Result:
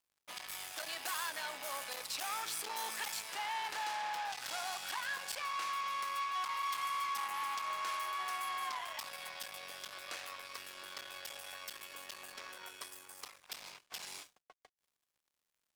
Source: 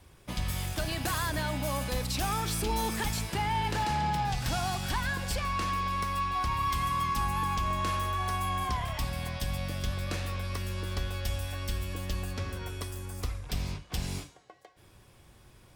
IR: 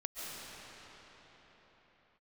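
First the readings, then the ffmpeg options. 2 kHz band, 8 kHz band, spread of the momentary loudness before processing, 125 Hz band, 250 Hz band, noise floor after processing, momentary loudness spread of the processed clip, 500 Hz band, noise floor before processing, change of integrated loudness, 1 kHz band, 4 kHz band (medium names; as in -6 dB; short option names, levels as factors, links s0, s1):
-4.5 dB, -4.5 dB, 7 LU, under -35 dB, under -25 dB, under -85 dBFS, 11 LU, -13.0 dB, -58 dBFS, -7.5 dB, -7.0 dB, -4.5 dB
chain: -af "aeval=exprs='(tanh(35.5*val(0)+0.45)-tanh(0.45))/35.5':c=same,highpass=810,aeval=exprs='sgn(val(0))*max(abs(val(0))-0.00112,0)':c=same"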